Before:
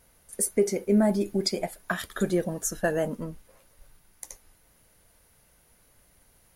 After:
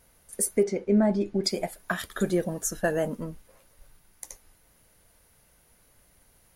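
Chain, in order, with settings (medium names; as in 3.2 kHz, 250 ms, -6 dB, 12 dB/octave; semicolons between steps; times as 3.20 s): 0.63–1.44 s: distance through air 130 m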